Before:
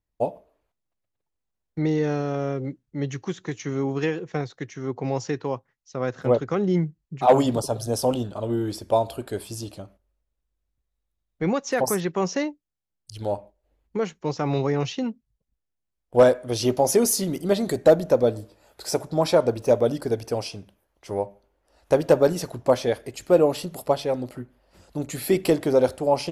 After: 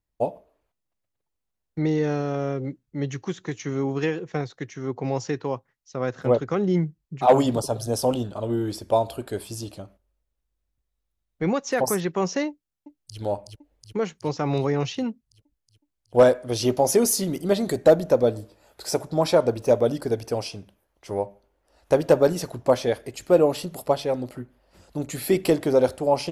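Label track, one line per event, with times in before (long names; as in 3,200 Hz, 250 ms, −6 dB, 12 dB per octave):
12.490000	13.180000	delay throw 370 ms, feedback 70%, level −3.5 dB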